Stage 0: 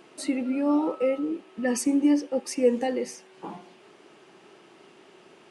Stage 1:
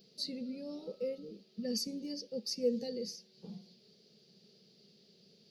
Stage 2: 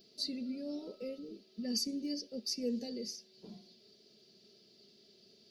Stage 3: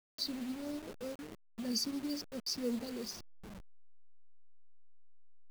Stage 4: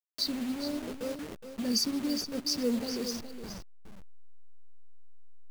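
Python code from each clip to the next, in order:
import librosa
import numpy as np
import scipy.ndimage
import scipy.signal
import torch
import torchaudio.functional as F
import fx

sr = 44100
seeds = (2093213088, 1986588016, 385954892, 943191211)

y1 = fx.curve_eq(x, sr, hz=(100.0, 210.0, 310.0, 460.0, 970.0, 2900.0, 4600.0, 8900.0, 13000.0), db=(0, 7, -19, -1, -28, -10, 14, -18, 12))
y1 = y1 * librosa.db_to_amplitude(-7.0)
y2 = y1 + 0.64 * np.pad(y1, (int(3.0 * sr / 1000.0), 0))[:len(y1)]
y3 = fx.delta_hold(y2, sr, step_db=-43.0)
y4 = y3 + 10.0 ** (-10.0 / 20.0) * np.pad(y3, (int(417 * sr / 1000.0), 0))[:len(y3)]
y4 = y4 * librosa.db_to_amplitude(6.5)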